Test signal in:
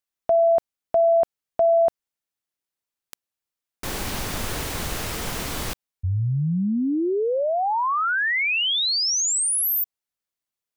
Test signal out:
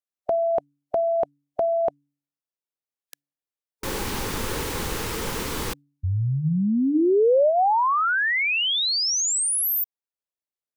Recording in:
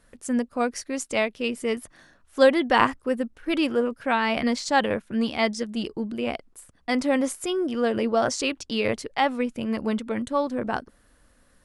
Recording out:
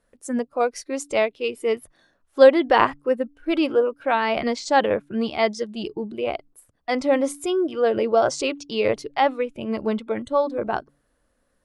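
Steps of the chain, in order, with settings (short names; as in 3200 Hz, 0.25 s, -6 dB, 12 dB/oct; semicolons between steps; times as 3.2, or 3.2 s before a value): spectral noise reduction 10 dB; bell 520 Hz +6.5 dB 1.8 oct; de-hum 143.3 Hz, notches 2; gain -1 dB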